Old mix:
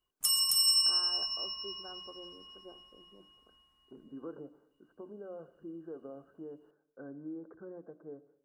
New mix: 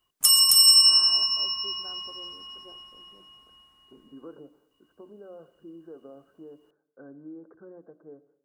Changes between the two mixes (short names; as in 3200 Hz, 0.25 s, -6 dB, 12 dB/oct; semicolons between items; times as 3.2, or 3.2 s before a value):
background +10.5 dB; master: add low shelf 62 Hz -10.5 dB